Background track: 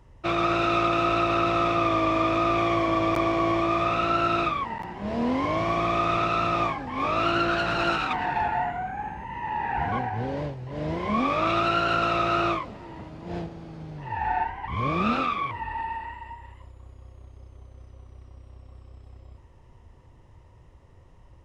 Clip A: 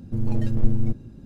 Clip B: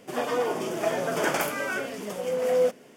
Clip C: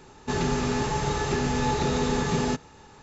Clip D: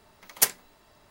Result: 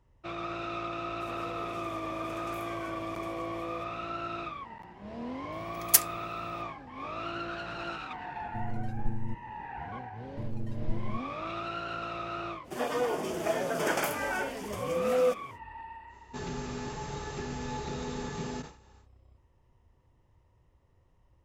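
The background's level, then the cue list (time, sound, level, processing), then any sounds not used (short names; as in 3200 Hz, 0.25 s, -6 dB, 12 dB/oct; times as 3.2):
background track -13 dB
1.13 add B -15 dB + compressor, threshold -27 dBFS
5.52 add D -6 dB + tilt +2 dB/oct
8.42 add A -12 dB
10.25 add A -12.5 dB
12.63 add B -3.5 dB, fades 0.05 s
16.06 add C -11.5 dB, fades 0.10 s + sustainer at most 140 dB/s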